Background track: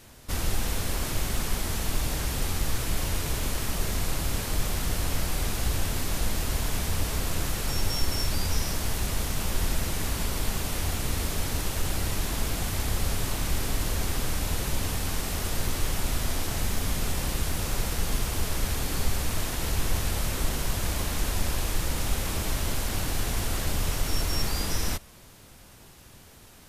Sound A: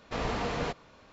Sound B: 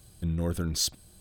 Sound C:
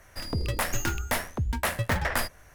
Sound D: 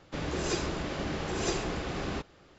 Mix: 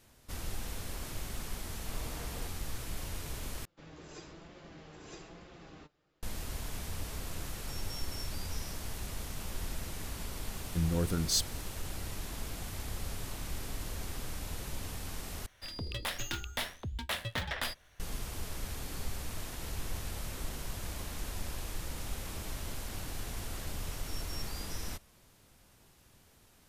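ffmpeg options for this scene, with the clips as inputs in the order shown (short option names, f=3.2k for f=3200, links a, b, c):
-filter_complex "[0:a]volume=-11.5dB[a];[4:a]flanger=delay=5.6:depth=1.2:regen=50:speed=1.1:shape=triangular[b];[3:a]equalizer=f=3.5k:t=o:w=0.82:g=14[c];[a]asplit=3[d][e][f];[d]atrim=end=3.654[g];[b]atrim=end=2.58,asetpts=PTS-STARTPTS,volume=-14dB[h];[e]atrim=start=6.226:end=15.464[i];[c]atrim=end=2.54,asetpts=PTS-STARTPTS,volume=-11dB[j];[f]atrim=start=17.996[k];[1:a]atrim=end=1.12,asetpts=PTS-STARTPTS,volume=-17dB,afade=t=in:d=0.004:c=hsin,afade=t=out:st=1.116:d=0.004:c=hsin,adelay=1760[l];[2:a]atrim=end=1.2,asetpts=PTS-STARTPTS,volume=-1.5dB,afade=t=in:d=0.004:c=hsin,afade=t=out:st=1.196:d=0.004:c=hsin,adelay=10530[m];[g][h]acrossfade=d=0.004:c1=hsin:c2=hsin[n];[n][i]acrossfade=d=0.004:c1=hsin:c2=hsin[o];[o][j]acrossfade=d=0.004:c1=hsin:c2=hsin[p];[p][k]acrossfade=d=0.004:c1=hsin:c2=hsin[q];[q][l][m]amix=inputs=3:normalize=0"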